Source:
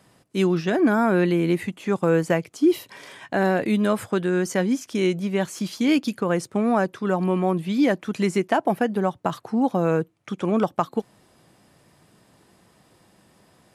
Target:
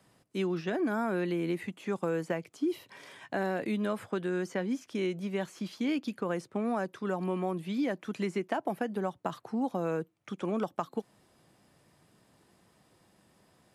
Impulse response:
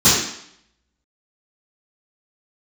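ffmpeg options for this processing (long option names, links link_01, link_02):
-filter_complex "[0:a]acrossover=split=160|4000[link_01][link_02][link_03];[link_01]acompressor=threshold=-45dB:ratio=4[link_04];[link_02]acompressor=threshold=-20dB:ratio=4[link_05];[link_03]acompressor=threshold=-49dB:ratio=4[link_06];[link_04][link_05][link_06]amix=inputs=3:normalize=0,volume=-7.5dB"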